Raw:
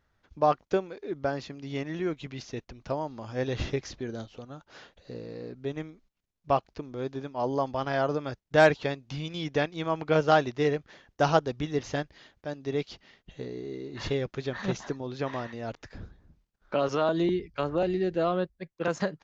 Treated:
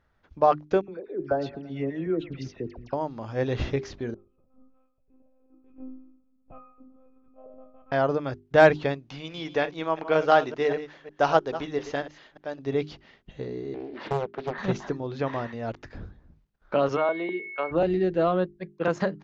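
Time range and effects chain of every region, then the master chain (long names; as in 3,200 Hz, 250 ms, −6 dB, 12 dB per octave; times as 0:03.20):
0:00.81–0:02.93: spectral envelope exaggerated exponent 1.5 + all-pass dispersion lows, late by 73 ms, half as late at 1,600 Hz + delay with a band-pass on its return 111 ms, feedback 54%, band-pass 1,200 Hz, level −15 dB
0:04.14–0:07.92: resonances in every octave D#, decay 0.71 s + echo machine with several playback heads 65 ms, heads first and third, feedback 66%, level −18 dB + one-pitch LPC vocoder at 8 kHz 260 Hz
0:09.08–0:12.59: delay that plays each chunk backwards 183 ms, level −13 dB + parametric band 81 Hz −13.5 dB 2.7 octaves
0:13.74–0:14.58: high-pass filter 230 Hz 24 dB per octave + high-frequency loss of the air 240 metres + highs frequency-modulated by the lows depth 0.71 ms
0:16.96–0:17.70: steady tone 2,200 Hz −35 dBFS + band-pass filter 500–3,900 Hz + high-frequency loss of the air 210 metres
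whole clip: low-pass filter 2,400 Hz 6 dB per octave; mains-hum notches 50/100/150/200/250/300/350/400 Hz; level +4 dB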